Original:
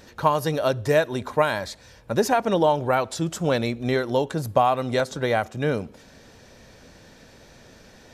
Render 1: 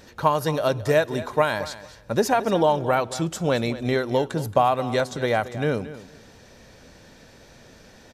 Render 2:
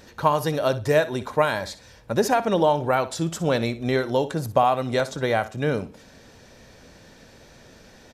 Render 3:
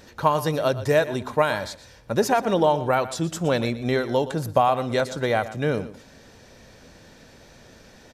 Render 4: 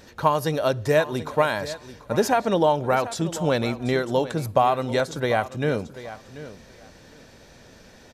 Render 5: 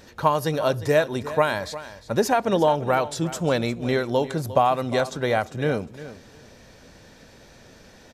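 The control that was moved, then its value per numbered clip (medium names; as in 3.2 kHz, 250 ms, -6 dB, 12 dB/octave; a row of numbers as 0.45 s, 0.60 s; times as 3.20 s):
feedback delay, time: 224 ms, 61 ms, 119 ms, 737 ms, 354 ms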